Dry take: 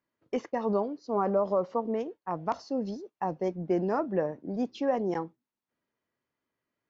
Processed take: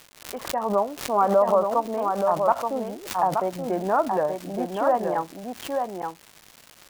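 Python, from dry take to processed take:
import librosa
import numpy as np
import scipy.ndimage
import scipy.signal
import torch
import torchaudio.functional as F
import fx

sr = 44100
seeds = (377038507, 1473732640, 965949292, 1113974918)

p1 = fx.fade_in_head(x, sr, length_s=0.74)
p2 = scipy.signal.sosfilt(scipy.signal.butter(16, 3300.0, 'lowpass', fs=sr, output='sos'), p1)
p3 = fx.band_shelf(p2, sr, hz=960.0, db=11.0, octaves=1.7)
p4 = fx.dmg_crackle(p3, sr, seeds[0], per_s=260.0, level_db=-32.0)
p5 = p4 + fx.echo_single(p4, sr, ms=877, db=-5.0, dry=0)
p6 = fx.pre_swell(p5, sr, db_per_s=110.0)
y = p6 * 10.0 ** (-1.5 / 20.0)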